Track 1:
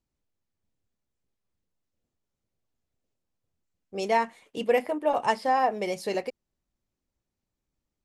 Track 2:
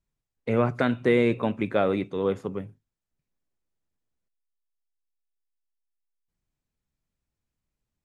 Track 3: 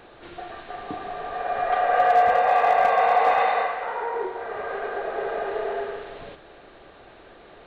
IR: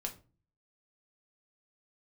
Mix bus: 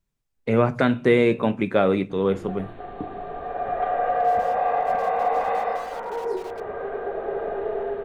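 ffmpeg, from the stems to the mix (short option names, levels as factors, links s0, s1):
-filter_complex "[0:a]adynamicequalizer=threshold=0.0112:dfrequency=360:dqfactor=1.6:tfrequency=360:tqfactor=1.6:attack=5:release=100:ratio=0.375:range=3:mode=cutabove:tftype=bell,acrossover=split=290|890[s0][s1][s2];[s0]acompressor=threshold=0.00447:ratio=4[s3];[s1]acompressor=threshold=0.0282:ratio=4[s4];[s2]acompressor=threshold=0.01:ratio=4[s5];[s3][s4][s5]amix=inputs=3:normalize=0,aeval=exprs='(mod(47.3*val(0)+1,2)-1)/47.3':c=same,adelay=300,volume=0.473[s6];[1:a]volume=1.12,asplit=2[s7][s8];[s8]volume=0.473[s9];[2:a]tiltshelf=f=750:g=7,adelay=2100,volume=0.668,asplit=2[s10][s11];[s11]volume=0.266[s12];[s6][s10]amix=inputs=2:normalize=0,lowpass=f=3400:p=1,alimiter=limit=0.15:level=0:latency=1:release=205,volume=1[s13];[3:a]atrim=start_sample=2205[s14];[s9][s12]amix=inputs=2:normalize=0[s15];[s15][s14]afir=irnorm=-1:irlink=0[s16];[s7][s13][s16]amix=inputs=3:normalize=0"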